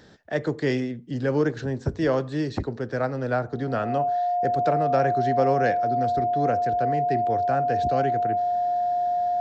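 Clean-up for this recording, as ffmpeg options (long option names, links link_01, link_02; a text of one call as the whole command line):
ffmpeg -i in.wav -af "bandreject=frequency=710:width=30" out.wav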